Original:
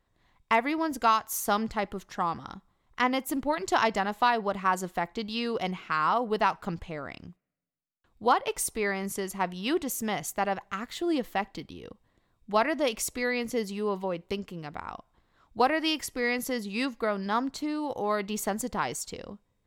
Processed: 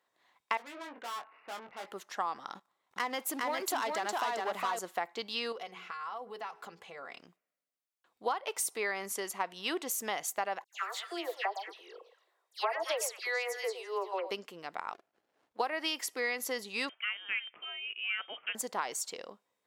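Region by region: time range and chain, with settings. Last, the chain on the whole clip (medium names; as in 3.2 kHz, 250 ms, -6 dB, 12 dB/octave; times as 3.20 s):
0.57–1.86 s: brick-wall FIR low-pass 2.9 kHz + valve stage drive 39 dB, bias 0.6 + doubling 21 ms -6 dB
2.55–4.79 s: compression 1.5:1, threshold -45 dBFS + waveshaping leveller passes 2 + delay 409 ms -3 dB
5.52–7.20 s: hum notches 60/120/180/240/300/360/420/480 Hz + compression 4:1, threshold -37 dBFS + comb of notches 310 Hz
10.64–14.31 s: elliptic high-pass 370 Hz + phase dispersion lows, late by 104 ms, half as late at 2.3 kHz + repeats whose band climbs or falls 111 ms, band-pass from 670 Hz, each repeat 1.4 oct, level -9 dB
14.93–15.59 s: compression 2:1, threshold -50 dBFS + sliding maximum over 33 samples
16.89–18.55 s: high-pass 1.3 kHz 6 dB/octave + frequency inversion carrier 3.4 kHz
whole clip: high-pass 500 Hz 12 dB/octave; compression 6:1, threshold -29 dBFS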